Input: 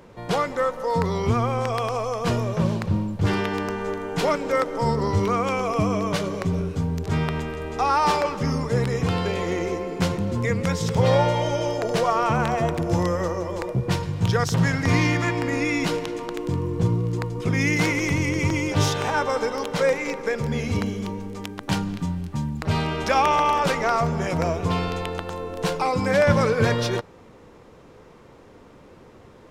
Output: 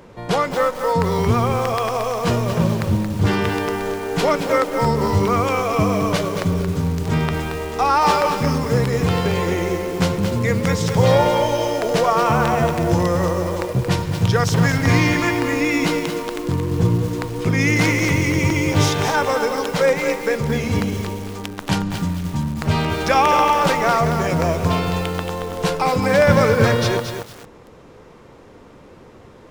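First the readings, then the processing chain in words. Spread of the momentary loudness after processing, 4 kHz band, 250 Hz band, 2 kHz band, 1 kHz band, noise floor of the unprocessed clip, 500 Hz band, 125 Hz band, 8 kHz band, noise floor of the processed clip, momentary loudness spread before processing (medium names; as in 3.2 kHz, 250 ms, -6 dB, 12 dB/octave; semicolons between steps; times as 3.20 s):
8 LU, +5.0 dB, +4.5 dB, +5.0 dB, +4.5 dB, -48 dBFS, +4.5 dB, +4.5 dB, +5.5 dB, -44 dBFS, 8 LU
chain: bit-crushed delay 226 ms, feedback 35%, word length 6-bit, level -6.5 dB; trim +4 dB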